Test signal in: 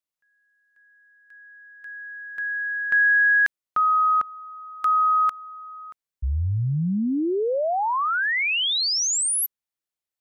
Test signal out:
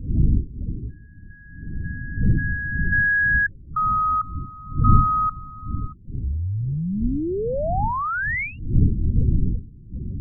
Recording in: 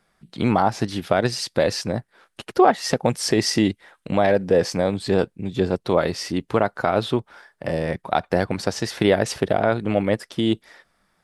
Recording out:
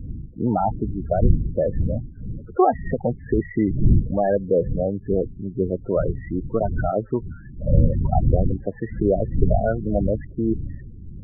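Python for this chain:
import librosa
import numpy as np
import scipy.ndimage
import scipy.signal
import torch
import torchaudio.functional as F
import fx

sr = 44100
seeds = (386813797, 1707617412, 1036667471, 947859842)

y = fx.dmg_wind(x, sr, seeds[0], corner_hz=110.0, level_db=-22.0)
y = scipy.signal.sosfilt(scipy.signal.butter(16, 2300.0, 'lowpass', fs=sr, output='sos'), y)
y = fx.spec_topn(y, sr, count=16)
y = y * 10.0 ** (-1.5 / 20.0)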